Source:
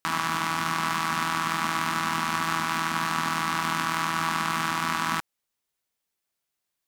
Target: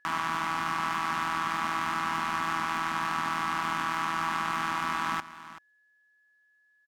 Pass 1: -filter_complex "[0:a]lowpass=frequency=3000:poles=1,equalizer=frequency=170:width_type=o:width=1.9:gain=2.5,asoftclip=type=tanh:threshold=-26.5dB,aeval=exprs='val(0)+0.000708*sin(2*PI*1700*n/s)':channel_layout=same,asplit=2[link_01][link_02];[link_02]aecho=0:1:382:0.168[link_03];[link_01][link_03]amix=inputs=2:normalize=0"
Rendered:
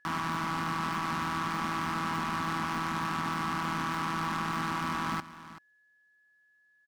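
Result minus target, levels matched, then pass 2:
125 Hz band +9.0 dB; soft clipping: distortion +8 dB
-filter_complex "[0:a]lowpass=frequency=3000:poles=1,equalizer=frequency=170:width_type=o:width=1.9:gain=-6,asoftclip=type=tanh:threshold=-19dB,aeval=exprs='val(0)+0.000708*sin(2*PI*1700*n/s)':channel_layout=same,asplit=2[link_01][link_02];[link_02]aecho=0:1:382:0.168[link_03];[link_01][link_03]amix=inputs=2:normalize=0"

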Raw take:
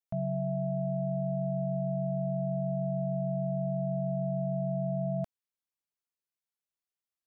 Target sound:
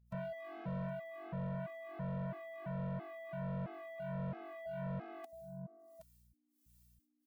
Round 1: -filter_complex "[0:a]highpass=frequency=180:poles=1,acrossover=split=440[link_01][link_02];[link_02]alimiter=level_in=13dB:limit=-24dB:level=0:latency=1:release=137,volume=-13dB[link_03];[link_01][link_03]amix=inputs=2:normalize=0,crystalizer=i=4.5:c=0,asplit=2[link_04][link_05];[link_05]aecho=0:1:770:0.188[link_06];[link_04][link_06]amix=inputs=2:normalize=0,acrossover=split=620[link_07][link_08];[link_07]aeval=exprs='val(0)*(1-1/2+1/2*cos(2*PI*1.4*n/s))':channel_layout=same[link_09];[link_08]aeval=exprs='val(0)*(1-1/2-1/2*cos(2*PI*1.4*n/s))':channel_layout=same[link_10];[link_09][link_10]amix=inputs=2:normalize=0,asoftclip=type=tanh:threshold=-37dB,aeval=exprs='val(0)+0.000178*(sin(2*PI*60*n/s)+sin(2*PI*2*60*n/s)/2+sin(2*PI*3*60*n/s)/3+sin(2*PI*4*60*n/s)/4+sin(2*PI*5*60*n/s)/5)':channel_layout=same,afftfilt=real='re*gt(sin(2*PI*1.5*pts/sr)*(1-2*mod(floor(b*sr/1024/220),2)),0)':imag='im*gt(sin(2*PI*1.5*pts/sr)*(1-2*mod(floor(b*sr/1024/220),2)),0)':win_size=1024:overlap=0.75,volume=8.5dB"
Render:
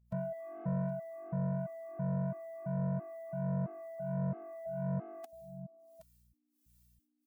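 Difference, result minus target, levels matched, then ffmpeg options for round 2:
soft clipping: distortion −6 dB
-filter_complex "[0:a]highpass=frequency=180:poles=1,acrossover=split=440[link_01][link_02];[link_02]alimiter=level_in=13dB:limit=-24dB:level=0:latency=1:release=137,volume=-13dB[link_03];[link_01][link_03]amix=inputs=2:normalize=0,crystalizer=i=4.5:c=0,asplit=2[link_04][link_05];[link_05]aecho=0:1:770:0.188[link_06];[link_04][link_06]amix=inputs=2:normalize=0,acrossover=split=620[link_07][link_08];[link_07]aeval=exprs='val(0)*(1-1/2+1/2*cos(2*PI*1.4*n/s))':channel_layout=same[link_09];[link_08]aeval=exprs='val(0)*(1-1/2-1/2*cos(2*PI*1.4*n/s))':channel_layout=same[link_10];[link_09][link_10]amix=inputs=2:normalize=0,asoftclip=type=tanh:threshold=-45.5dB,aeval=exprs='val(0)+0.000178*(sin(2*PI*60*n/s)+sin(2*PI*2*60*n/s)/2+sin(2*PI*3*60*n/s)/3+sin(2*PI*4*60*n/s)/4+sin(2*PI*5*60*n/s)/5)':channel_layout=same,afftfilt=real='re*gt(sin(2*PI*1.5*pts/sr)*(1-2*mod(floor(b*sr/1024/220),2)),0)':imag='im*gt(sin(2*PI*1.5*pts/sr)*(1-2*mod(floor(b*sr/1024/220),2)),0)':win_size=1024:overlap=0.75,volume=8.5dB"

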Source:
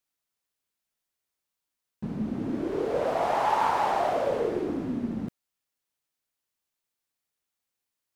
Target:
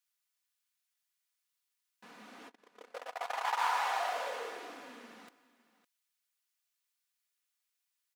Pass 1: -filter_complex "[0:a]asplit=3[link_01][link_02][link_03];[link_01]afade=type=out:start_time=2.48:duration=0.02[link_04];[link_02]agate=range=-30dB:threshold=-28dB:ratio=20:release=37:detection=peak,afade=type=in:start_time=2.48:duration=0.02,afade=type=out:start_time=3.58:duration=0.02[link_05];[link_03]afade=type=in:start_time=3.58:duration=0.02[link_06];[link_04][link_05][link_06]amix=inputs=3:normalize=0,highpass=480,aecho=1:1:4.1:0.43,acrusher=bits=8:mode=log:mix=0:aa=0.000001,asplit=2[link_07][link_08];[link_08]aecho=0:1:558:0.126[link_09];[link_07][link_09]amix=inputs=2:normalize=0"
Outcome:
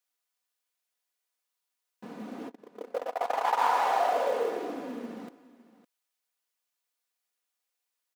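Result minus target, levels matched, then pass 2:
500 Hz band +6.5 dB
-filter_complex "[0:a]asplit=3[link_01][link_02][link_03];[link_01]afade=type=out:start_time=2.48:duration=0.02[link_04];[link_02]agate=range=-30dB:threshold=-28dB:ratio=20:release=37:detection=peak,afade=type=in:start_time=2.48:duration=0.02,afade=type=out:start_time=3.58:duration=0.02[link_05];[link_03]afade=type=in:start_time=3.58:duration=0.02[link_06];[link_04][link_05][link_06]amix=inputs=3:normalize=0,highpass=1300,aecho=1:1:4.1:0.43,acrusher=bits=8:mode=log:mix=0:aa=0.000001,asplit=2[link_07][link_08];[link_08]aecho=0:1:558:0.126[link_09];[link_07][link_09]amix=inputs=2:normalize=0"

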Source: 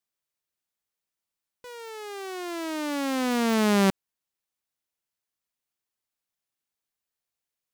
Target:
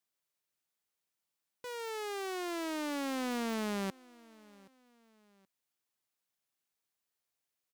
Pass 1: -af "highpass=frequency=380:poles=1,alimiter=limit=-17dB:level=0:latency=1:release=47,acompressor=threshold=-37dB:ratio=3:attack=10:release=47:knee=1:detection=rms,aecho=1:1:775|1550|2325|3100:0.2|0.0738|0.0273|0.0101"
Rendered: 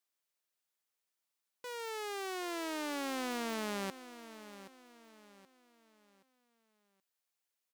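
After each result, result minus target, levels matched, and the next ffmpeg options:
echo-to-direct +9.5 dB; 125 Hz band −2.5 dB
-af "highpass=frequency=380:poles=1,alimiter=limit=-17dB:level=0:latency=1:release=47,acompressor=threshold=-37dB:ratio=3:attack=10:release=47:knee=1:detection=rms,aecho=1:1:775|1550:0.0668|0.0247"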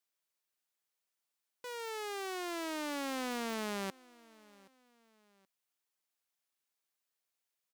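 125 Hz band −3.5 dB
-af "highpass=frequency=100:poles=1,alimiter=limit=-17dB:level=0:latency=1:release=47,acompressor=threshold=-37dB:ratio=3:attack=10:release=47:knee=1:detection=rms,aecho=1:1:775|1550:0.0668|0.0247"

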